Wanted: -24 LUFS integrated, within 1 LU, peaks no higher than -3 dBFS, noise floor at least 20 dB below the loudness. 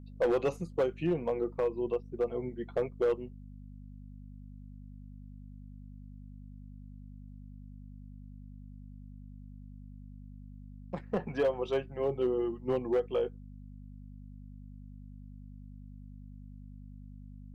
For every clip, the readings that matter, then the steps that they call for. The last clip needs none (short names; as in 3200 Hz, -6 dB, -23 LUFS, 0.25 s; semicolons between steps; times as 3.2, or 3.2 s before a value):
clipped 0.6%; flat tops at -22.5 dBFS; hum 50 Hz; harmonics up to 250 Hz; hum level -46 dBFS; loudness -32.5 LUFS; peak -22.5 dBFS; loudness target -24.0 LUFS
-> clip repair -22.5 dBFS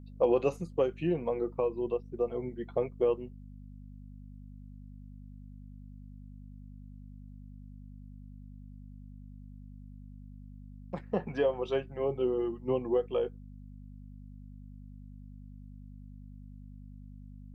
clipped 0.0%; hum 50 Hz; harmonics up to 250 Hz; hum level -45 dBFS
-> de-hum 50 Hz, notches 5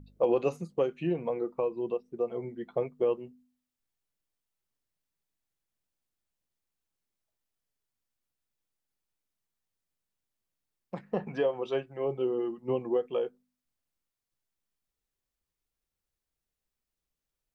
hum none; loudness -32.0 LUFS; peak -13.0 dBFS; loudness target -24.0 LUFS
-> gain +8 dB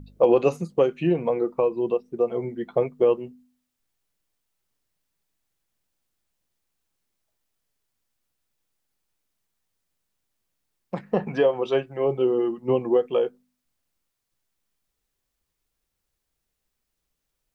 loudness -24.0 LUFS; peak -5.0 dBFS; noise floor -80 dBFS